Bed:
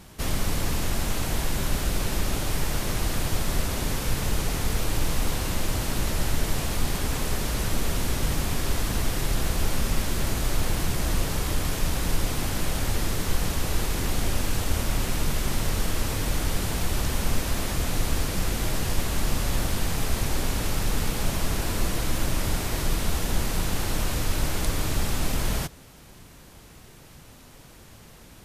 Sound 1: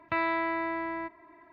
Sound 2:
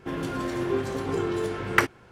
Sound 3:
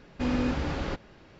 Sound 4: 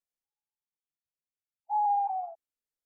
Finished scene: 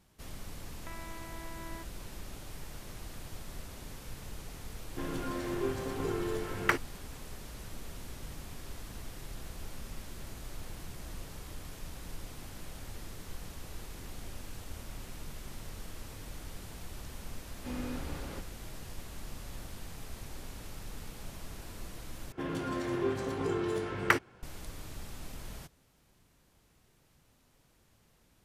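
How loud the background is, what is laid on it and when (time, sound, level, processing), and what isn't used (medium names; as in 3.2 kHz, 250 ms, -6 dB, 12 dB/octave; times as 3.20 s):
bed -18.5 dB
0.75 s: add 1 -10.5 dB + compression, threshold -32 dBFS
4.91 s: add 2 -7 dB
17.45 s: add 3 -11.5 dB
22.32 s: replace with 2 -5 dB
not used: 4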